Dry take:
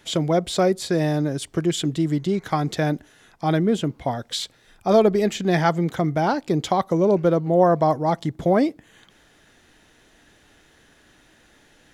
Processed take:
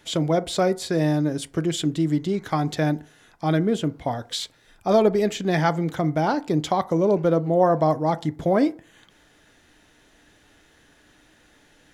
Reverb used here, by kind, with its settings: FDN reverb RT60 0.41 s, low-frequency decay 0.8×, high-frequency decay 0.4×, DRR 13 dB; gain -1.5 dB

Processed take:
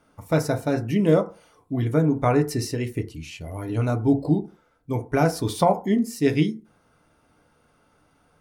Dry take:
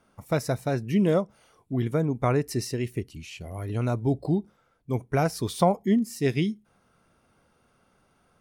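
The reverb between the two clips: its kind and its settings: FDN reverb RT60 0.35 s, low-frequency decay 0.9×, high-frequency decay 0.35×, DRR 5 dB; gain +2 dB

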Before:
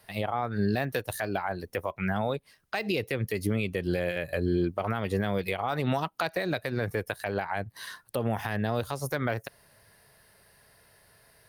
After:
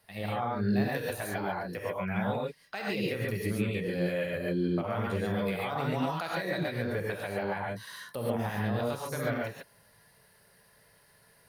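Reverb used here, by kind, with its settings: non-linear reverb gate 0.16 s rising, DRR -4 dB; gain -7.5 dB

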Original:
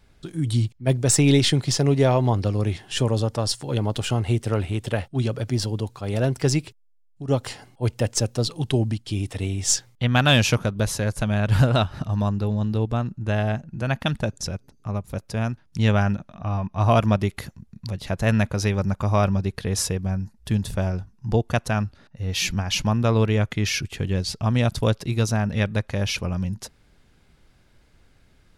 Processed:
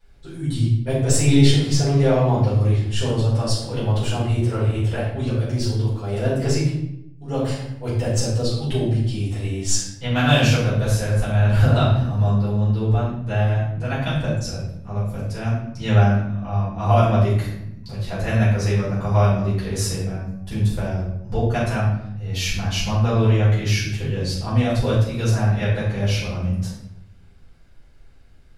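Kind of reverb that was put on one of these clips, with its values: shoebox room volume 200 m³, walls mixed, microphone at 4.8 m; gain -13 dB

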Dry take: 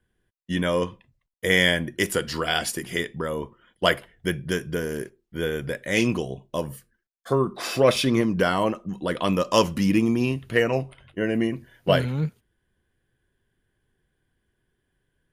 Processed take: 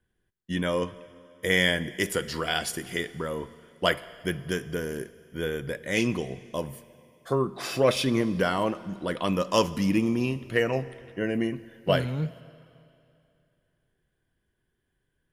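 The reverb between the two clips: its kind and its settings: Schroeder reverb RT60 2.6 s, DRR 17 dB; gain -3.5 dB

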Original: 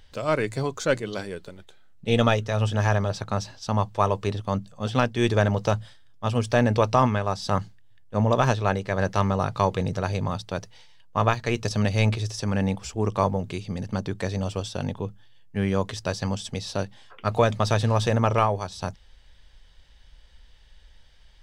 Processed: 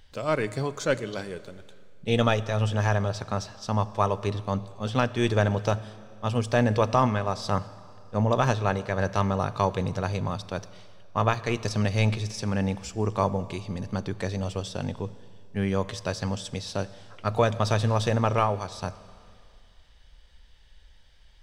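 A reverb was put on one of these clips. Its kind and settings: Schroeder reverb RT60 2.3 s, combs from 29 ms, DRR 16 dB; gain -2 dB

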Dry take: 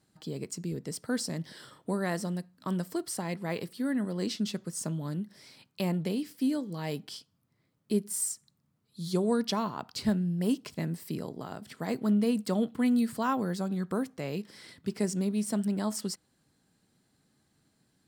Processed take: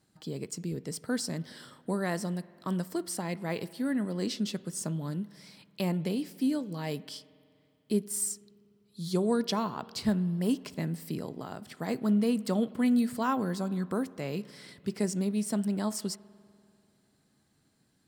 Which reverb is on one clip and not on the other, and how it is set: spring tank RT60 2.5 s, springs 49 ms, chirp 80 ms, DRR 19 dB

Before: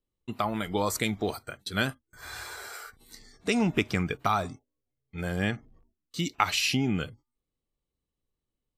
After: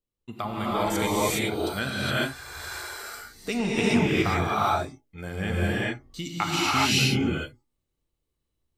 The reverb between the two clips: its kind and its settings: non-linear reverb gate 0.44 s rising, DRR -8 dB; gain -4 dB

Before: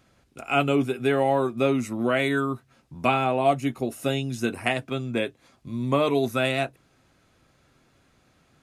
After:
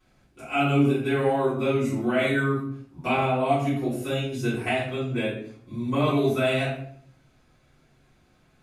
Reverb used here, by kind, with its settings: shoebox room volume 91 m³, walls mixed, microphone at 3.6 m; gain -14 dB

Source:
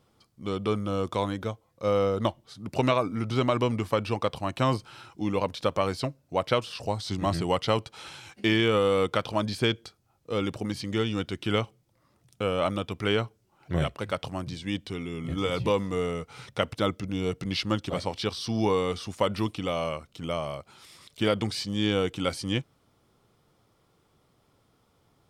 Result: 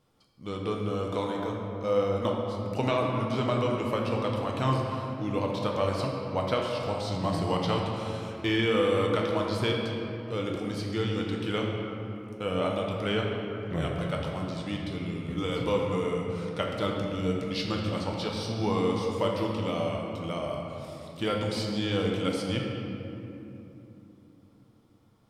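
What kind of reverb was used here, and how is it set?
shoebox room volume 150 m³, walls hard, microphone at 0.48 m; gain -5 dB

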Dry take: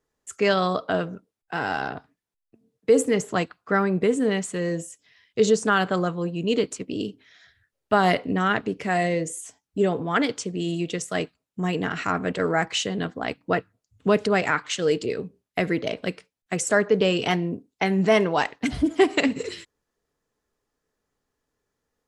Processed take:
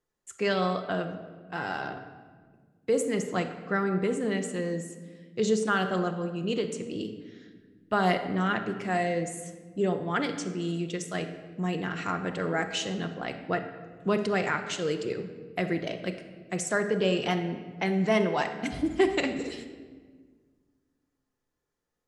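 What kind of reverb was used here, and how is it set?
shoebox room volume 1700 m³, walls mixed, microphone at 0.89 m; gain -6.5 dB

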